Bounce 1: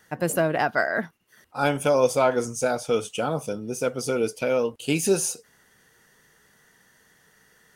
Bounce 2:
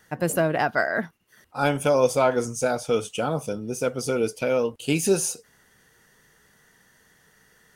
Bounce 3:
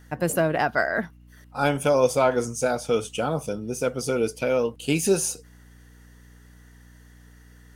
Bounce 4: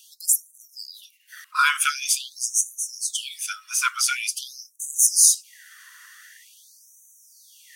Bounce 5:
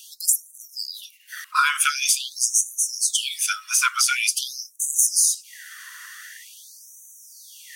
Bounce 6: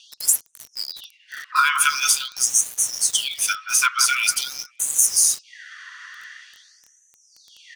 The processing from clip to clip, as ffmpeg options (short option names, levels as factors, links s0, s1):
-af "lowshelf=f=110:g=5"
-af "aeval=exprs='val(0)+0.00355*(sin(2*PI*60*n/s)+sin(2*PI*2*60*n/s)/2+sin(2*PI*3*60*n/s)/3+sin(2*PI*4*60*n/s)/4+sin(2*PI*5*60*n/s)/5)':c=same"
-af "alimiter=level_in=4.47:limit=0.891:release=50:level=0:latency=1,afftfilt=real='re*gte(b*sr/1024,960*pow(5900/960,0.5+0.5*sin(2*PI*0.46*pts/sr)))':imag='im*gte(b*sr/1024,960*pow(5900/960,0.5+0.5*sin(2*PI*0.46*pts/sr)))':win_size=1024:overlap=0.75"
-af "acompressor=threshold=0.0708:ratio=6,volume=2.24"
-filter_complex "[0:a]acrossover=split=1900|5400[s0][s1][s2];[s0]aecho=1:1:176|352|528|704:0.501|0.165|0.0546|0.018[s3];[s2]acrusher=bits=5:mix=0:aa=0.000001[s4];[s3][s1][s4]amix=inputs=3:normalize=0,volume=1.19"